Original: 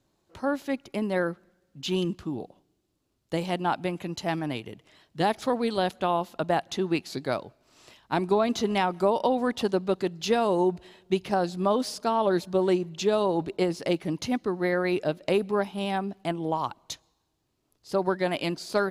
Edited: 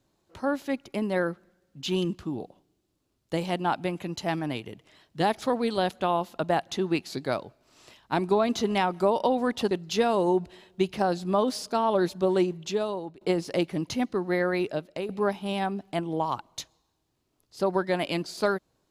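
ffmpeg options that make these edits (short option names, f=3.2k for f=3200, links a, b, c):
-filter_complex "[0:a]asplit=4[a][b][c][d];[a]atrim=end=9.712[e];[b]atrim=start=10.028:end=13.53,asetpts=PTS-STARTPTS,afade=t=out:st=2.802:d=0.7:silence=0.0794328[f];[c]atrim=start=13.53:end=15.41,asetpts=PTS-STARTPTS,afade=t=in:d=0.004:c=hsin:silence=0.0794328,afade=t=out:st=1.28:d=0.6:silence=0.281838[g];[d]atrim=start=15.41,asetpts=PTS-STARTPTS,afade=t=in:d=0.004:c=hsin:silence=0.281838[h];[f][g][h]concat=n=3:v=0:a=1[i];[e][i]acrossfade=d=0.004:c1=hsin:c2=hsin"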